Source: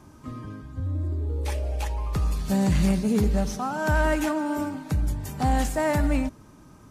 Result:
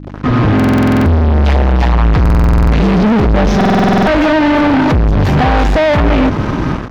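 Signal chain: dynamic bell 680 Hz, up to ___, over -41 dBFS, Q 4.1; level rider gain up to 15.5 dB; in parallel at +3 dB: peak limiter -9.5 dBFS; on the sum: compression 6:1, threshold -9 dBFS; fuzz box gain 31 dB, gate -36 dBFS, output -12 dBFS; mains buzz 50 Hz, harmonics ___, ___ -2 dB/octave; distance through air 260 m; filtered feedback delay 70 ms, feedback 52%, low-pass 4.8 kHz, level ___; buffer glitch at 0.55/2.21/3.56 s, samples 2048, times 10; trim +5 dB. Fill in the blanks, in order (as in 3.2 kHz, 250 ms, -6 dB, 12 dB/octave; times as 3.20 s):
+6 dB, 6, -34 dBFS, -22.5 dB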